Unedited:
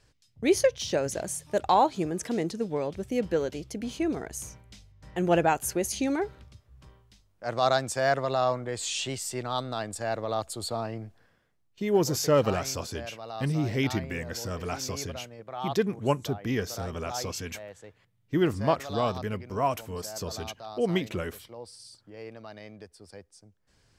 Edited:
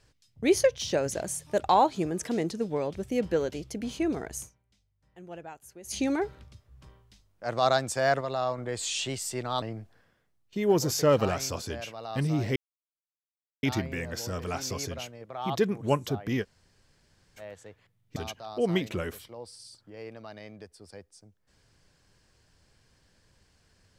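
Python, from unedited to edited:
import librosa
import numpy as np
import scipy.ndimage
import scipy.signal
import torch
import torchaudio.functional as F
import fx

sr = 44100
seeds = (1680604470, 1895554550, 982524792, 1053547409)

y = fx.edit(x, sr, fx.fade_down_up(start_s=4.4, length_s=1.54, db=-20.0, fade_s=0.13, curve='qua'),
    fx.clip_gain(start_s=8.21, length_s=0.37, db=-4.0),
    fx.cut(start_s=9.62, length_s=1.25),
    fx.insert_silence(at_s=13.81, length_s=1.07),
    fx.room_tone_fill(start_s=16.6, length_s=0.97, crossfade_s=0.06),
    fx.cut(start_s=18.34, length_s=2.02), tone=tone)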